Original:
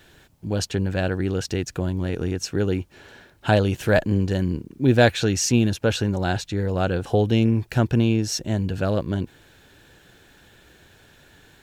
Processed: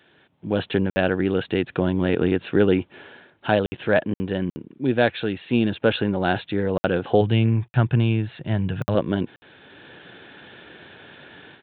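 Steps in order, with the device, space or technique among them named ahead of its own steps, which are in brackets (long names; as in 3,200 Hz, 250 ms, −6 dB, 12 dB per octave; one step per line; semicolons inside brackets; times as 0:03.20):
call with lost packets (high-pass filter 170 Hz 12 dB per octave; downsampling to 8,000 Hz; automatic gain control gain up to 13 dB; dropped packets of 60 ms)
0:07.21–0:08.95: graphic EQ with 10 bands 125 Hz +9 dB, 250 Hz −7 dB, 500 Hz −6 dB, 4,000 Hz −4 dB
level −3.5 dB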